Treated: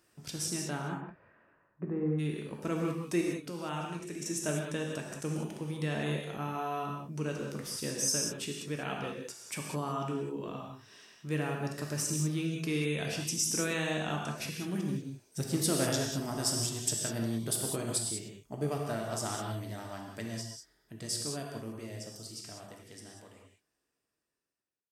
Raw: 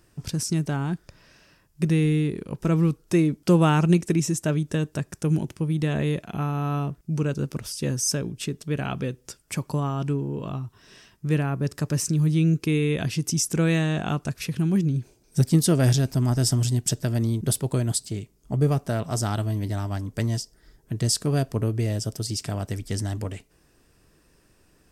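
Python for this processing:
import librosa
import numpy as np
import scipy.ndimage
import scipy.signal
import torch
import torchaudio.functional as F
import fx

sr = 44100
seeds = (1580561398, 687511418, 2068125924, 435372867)

y = fx.fade_out_tail(x, sr, length_s=6.79)
y = fx.lowpass(y, sr, hz=fx.line((0.8, 2300.0), (2.18, 1100.0)), slope=24, at=(0.8, 2.18), fade=0.02)
y = fx.level_steps(y, sr, step_db=14, at=(3.21, 4.26))
y = fx.highpass(y, sr, hz=390.0, slope=6)
y = fx.rev_gated(y, sr, seeds[0], gate_ms=220, shape='flat', drr_db=-0.5)
y = F.gain(torch.from_numpy(y), -6.5).numpy()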